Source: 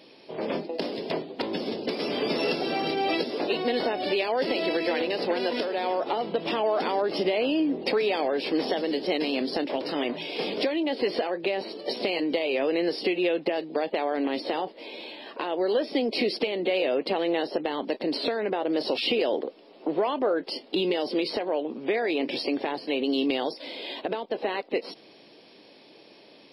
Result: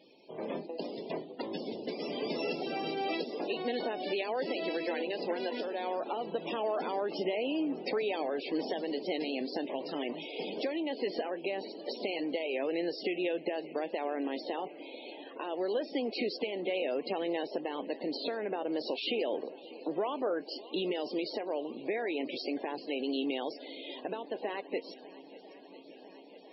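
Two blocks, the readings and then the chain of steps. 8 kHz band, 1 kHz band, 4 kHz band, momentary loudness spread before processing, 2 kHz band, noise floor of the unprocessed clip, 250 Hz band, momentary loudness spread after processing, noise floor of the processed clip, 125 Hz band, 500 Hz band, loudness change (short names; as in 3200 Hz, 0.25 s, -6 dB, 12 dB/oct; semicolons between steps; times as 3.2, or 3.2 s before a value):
n/a, -7.5 dB, -9.0 dB, 7 LU, -8.5 dB, -53 dBFS, -7.5 dB, 8 LU, -52 dBFS, -8.0 dB, -7.5 dB, -7.5 dB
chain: swung echo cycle 0.999 s, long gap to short 1.5:1, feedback 74%, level -20 dB; loudest bins only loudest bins 64; gain -7.5 dB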